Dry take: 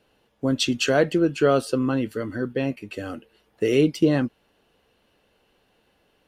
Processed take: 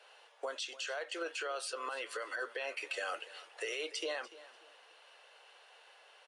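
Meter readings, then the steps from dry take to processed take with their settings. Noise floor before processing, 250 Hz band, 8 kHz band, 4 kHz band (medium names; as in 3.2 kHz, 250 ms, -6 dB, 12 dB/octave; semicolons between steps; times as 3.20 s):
-66 dBFS, -32.0 dB, -10.0 dB, -10.5 dB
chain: Bessel high-pass 900 Hz, order 8; compression 6:1, threshold -42 dBFS, peak gain reduction 20 dB; peak limiter -41 dBFS, peak gain reduction 12 dB; gain riding 2 s; feedback delay 293 ms, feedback 31%, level -17.5 dB; resampled via 22.05 kHz; tape noise reduction on one side only decoder only; trim +11.5 dB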